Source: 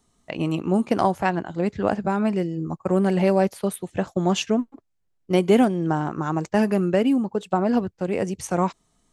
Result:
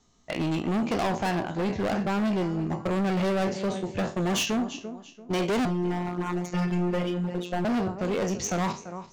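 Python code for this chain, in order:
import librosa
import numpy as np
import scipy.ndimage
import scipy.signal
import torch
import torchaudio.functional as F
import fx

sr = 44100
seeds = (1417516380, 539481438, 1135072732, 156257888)

y = fx.spec_trails(x, sr, decay_s=0.3)
y = scipy.signal.sosfilt(scipy.signal.butter(12, 7100.0, 'lowpass', fs=sr, output='sos'), y)
y = fx.high_shelf(y, sr, hz=4100.0, db=5.5)
y = fx.echo_feedback(y, sr, ms=339, feedback_pct=31, wet_db=-17)
y = fx.robotise(y, sr, hz=177.0, at=(5.65, 7.65))
y = np.clip(10.0 ** (23.5 / 20.0) * y, -1.0, 1.0) / 10.0 ** (23.5 / 20.0)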